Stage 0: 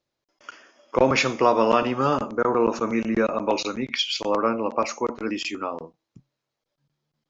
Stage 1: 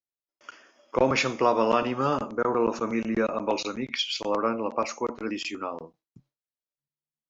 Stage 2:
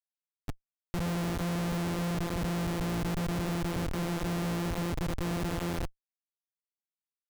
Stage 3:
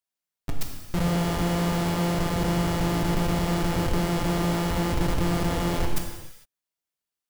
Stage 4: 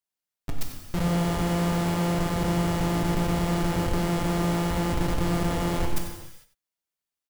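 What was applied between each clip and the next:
gate with hold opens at -50 dBFS; gain -3.5 dB
sample sorter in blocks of 256 samples; Schmitt trigger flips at -37.5 dBFS; gain -2.5 dB
half-waves squared off; non-linear reverb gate 0.48 s falling, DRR 0.5 dB; gain +4 dB
echo 93 ms -12 dB; gain -1.5 dB

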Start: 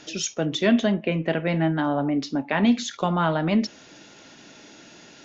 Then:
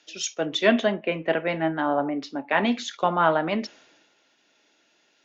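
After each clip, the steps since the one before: tone controls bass -15 dB, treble -9 dB; three-band expander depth 70%; gain +2.5 dB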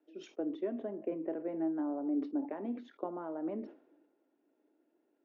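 compressor, threshold -27 dBFS, peak gain reduction 13 dB; ladder band-pass 350 Hz, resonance 55%; sustainer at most 140 dB/s; gain +4.5 dB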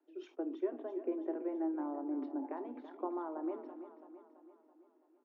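rippled Chebyshev high-pass 250 Hz, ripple 9 dB; air absorption 100 m; feedback echo 0.332 s, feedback 54%, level -12 dB; gain +4 dB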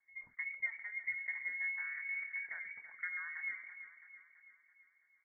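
inverted band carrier 2500 Hz; gain -3 dB

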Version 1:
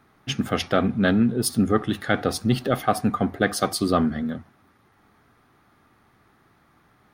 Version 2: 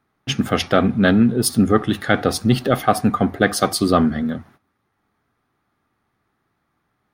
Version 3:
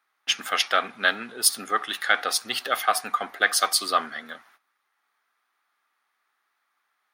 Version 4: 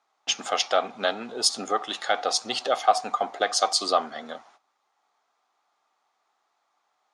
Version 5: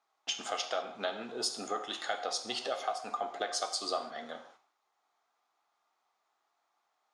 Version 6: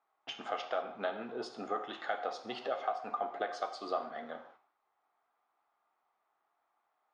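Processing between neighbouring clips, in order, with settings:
gate -52 dBFS, range -16 dB; gain +5 dB
HPF 1200 Hz 12 dB/oct; gain +1.5 dB
tone controls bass -4 dB, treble -14 dB; in parallel at +0.5 dB: compressor, threshold -30 dBFS, peak gain reduction 14.5 dB; on the sum: EQ curve 370 Hz 0 dB, 760 Hz +5 dB, 1700 Hz -13 dB, 7200 Hz +13 dB, 14000 Hz -22 dB
compressor 4:1, threshold -25 dBFS, peak gain reduction 11 dB; reverb, pre-delay 3 ms, DRR 6 dB; gain -6.5 dB
LPF 2100 Hz 12 dB/oct

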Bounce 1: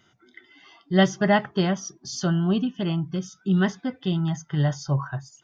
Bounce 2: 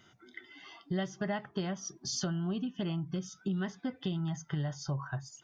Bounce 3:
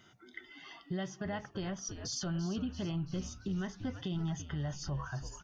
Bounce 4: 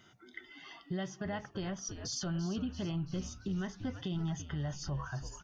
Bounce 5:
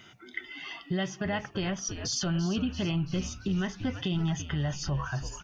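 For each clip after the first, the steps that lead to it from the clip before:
compressor 6:1, threshold -32 dBFS, peak gain reduction 18 dB
frequency-shifting echo 0.337 s, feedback 55%, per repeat -92 Hz, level -13 dB; limiter -28.5 dBFS, peak gain reduction 6.5 dB
nothing audible
bell 2500 Hz +9 dB 0.58 oct; gain +6.5 dB

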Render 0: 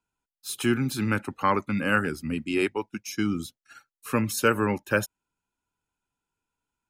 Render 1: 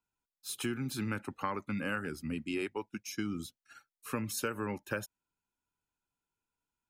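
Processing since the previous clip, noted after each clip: compressor 6:1, threshold -25 dBFS, peak gain reduction 10 dB; gain -6 dB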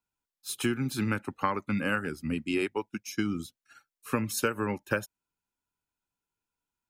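upward expander 1.5:1, over -47 dBFS; gain +8 dB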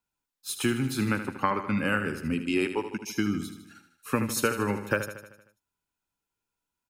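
feedback echo 77 ms, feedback 57%, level -10 dB; gain +2 dB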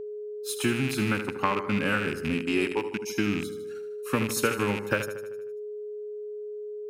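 rattling part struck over -35 dBFS, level -22 dBFS; whine 420 Hz -34 dBFS

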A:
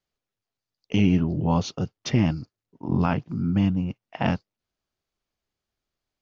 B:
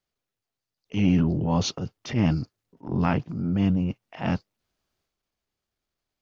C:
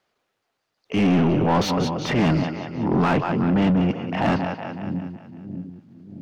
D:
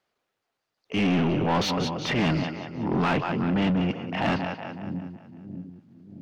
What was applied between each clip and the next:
transient shaper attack -9 dB, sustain +6 dB
split-band echo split 340 Hz, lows 0.627 s, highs 0.185 s, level -12 dB; overdrive pedal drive 29 dB, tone 1200 Hz, clips at -7.5 dBFS; gain -2 dB
dynamic EQ 3100 Hz, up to +6 dB, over -40 dBFS, Q 0.7; gain -5 dB

